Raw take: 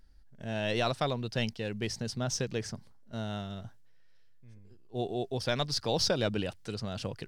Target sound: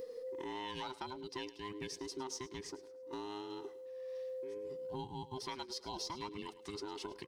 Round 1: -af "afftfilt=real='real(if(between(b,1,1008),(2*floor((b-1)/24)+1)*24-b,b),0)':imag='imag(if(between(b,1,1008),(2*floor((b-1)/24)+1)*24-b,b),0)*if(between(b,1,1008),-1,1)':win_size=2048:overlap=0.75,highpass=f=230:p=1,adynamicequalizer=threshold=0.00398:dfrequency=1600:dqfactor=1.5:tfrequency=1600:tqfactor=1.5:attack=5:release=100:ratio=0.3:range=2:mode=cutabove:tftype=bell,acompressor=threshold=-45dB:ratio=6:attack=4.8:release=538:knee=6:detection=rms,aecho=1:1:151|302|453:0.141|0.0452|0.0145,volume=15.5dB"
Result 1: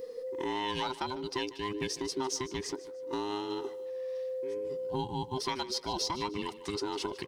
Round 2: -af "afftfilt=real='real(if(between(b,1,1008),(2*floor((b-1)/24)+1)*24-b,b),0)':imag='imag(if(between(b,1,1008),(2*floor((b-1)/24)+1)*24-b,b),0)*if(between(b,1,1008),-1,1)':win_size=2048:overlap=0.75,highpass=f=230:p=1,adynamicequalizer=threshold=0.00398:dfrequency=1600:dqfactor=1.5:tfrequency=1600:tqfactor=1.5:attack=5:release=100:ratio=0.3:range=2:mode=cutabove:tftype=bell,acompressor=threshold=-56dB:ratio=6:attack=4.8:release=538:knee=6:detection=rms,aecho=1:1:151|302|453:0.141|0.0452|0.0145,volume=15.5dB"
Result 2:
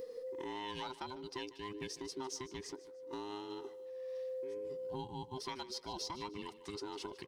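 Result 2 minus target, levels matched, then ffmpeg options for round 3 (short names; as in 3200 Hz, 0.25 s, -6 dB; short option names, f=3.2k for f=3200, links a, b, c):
echo 45 ms late
-af "afftfilt=real='real(if(between(b,1,1008),(2*floor((b-1)/24)+1)*24-b,b),0)':imag='imag(if(between(b,1,1008),(2*floor((b-1)/24)+1)*24-b,b),0)*if(between(b,1,1008),-1,1)':win_size=2048:overlap=0.75,highpass=f=230:p=1,adynamicequalizer=threshold=0.00398:dfrequency=1600:dqfactor=1.5:tfrequency=1600:tqfactor=1.5:attack=5:release=100:ratio=0.3:range=2:mode=cutabove:tftype=bell,acompressor=threshold=-56dB:ratio=6:attack=4.8:release=538:knee=6:detection=rms,aecho=1:1:106|212|318:0.141|0.0452|0.0145,volume=15.5dB"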